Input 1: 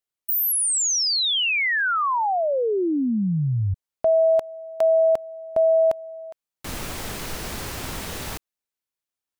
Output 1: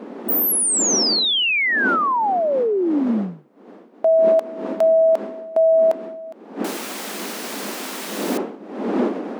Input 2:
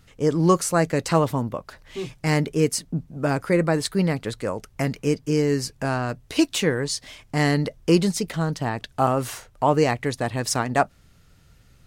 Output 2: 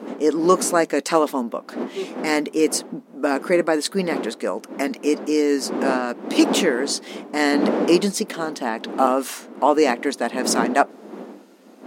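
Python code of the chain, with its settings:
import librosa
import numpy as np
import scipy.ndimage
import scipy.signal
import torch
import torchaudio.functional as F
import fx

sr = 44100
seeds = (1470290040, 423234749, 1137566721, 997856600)

y = fx.dmg_wind(x, sr, seeds[0], corner_hz=360.0, level_db=-30.0)
y = fx.brickwall_highpass(y, sr, low_hz=190.0)
y = y * librosa.db_to_amplitude(3.0)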